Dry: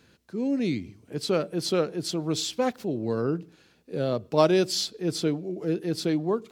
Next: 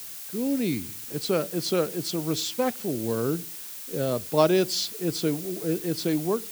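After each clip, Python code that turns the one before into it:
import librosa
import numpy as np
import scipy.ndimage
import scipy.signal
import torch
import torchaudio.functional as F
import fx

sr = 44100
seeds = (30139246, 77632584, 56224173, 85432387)

y = fx.dmg_noise_colour(x, sr, seeds[0], colour='blue', level_db=-39.0)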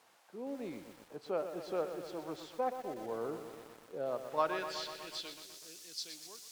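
y = fx.filter_sweep_bandpass(x, sr, from_hz=790.0, to_hz=5400.0, start_s=4.04, end_s=5.62, q=1.8)
y = fx.echo_crushed(y, sr, ms=123, feedback_pct=80, bits=8, wet_db=-9.0)
y = F.gain(torch.from_numpy(y), -4.0).numpy()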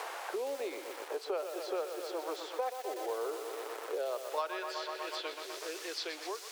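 y = scipy.signal.sosfilt(scipy.signal.ellip(4, 1.0, 70, 380.0, 'highpass', fs=sr, output='sos'), x)
y = fx.band_squash(y, sr, depth_pct=100)
y = F.gain(torch.from_numpy(y), 3.0).numpy()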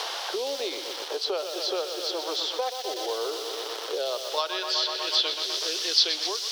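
y = fx.band_shelf(x, sr, hz=4200.0, db=14.0, octaves=1.2)
y = F.gain(torch.from_numpy(y), 5.5).numpy()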